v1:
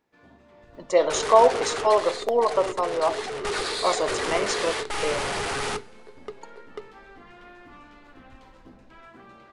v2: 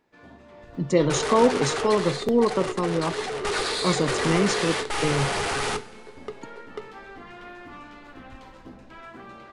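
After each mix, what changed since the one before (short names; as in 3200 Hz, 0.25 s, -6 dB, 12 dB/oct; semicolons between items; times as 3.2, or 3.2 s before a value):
speech: remove resonant high-pass 660 Hz, resonance Q 3.5; first sound +5.5 dB; second sound: send +7.5 dB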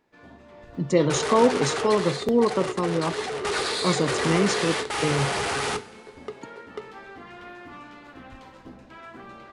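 second sound: add HPF 65 Hz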